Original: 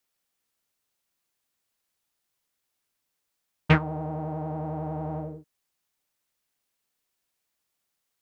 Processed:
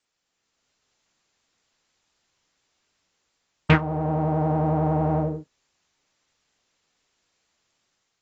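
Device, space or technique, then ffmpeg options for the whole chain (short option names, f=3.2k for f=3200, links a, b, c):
low-bitrate web radio: -af "dynaudnorm=f=210:g=5:m=6dB,alimiter=limit=-9.5dB:level=0:latency=1:release=399,volume=4dB" -ar 24000 -c:a aac -b:a 24k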